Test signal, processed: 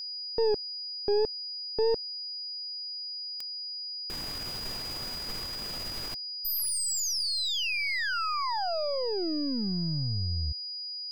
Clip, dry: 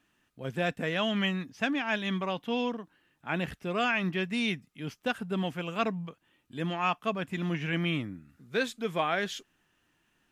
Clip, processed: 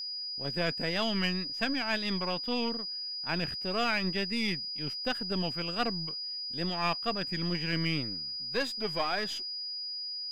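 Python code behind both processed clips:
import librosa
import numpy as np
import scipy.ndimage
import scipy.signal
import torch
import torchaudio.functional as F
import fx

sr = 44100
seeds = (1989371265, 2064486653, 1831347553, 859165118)

y = np.where(x < 0.0, 10.0 ** (-7.0 / 20.0) * x, x)
y = fx.wow_flutter(y, sr, seeds[0], rate_hz=2.1, depth_cents=92.0)
y = y + 10.0 ** (-35.0 / 20.0) * np.sin(2.0 * np.pi * 4900.0 * np.arange(len(y)) / sr)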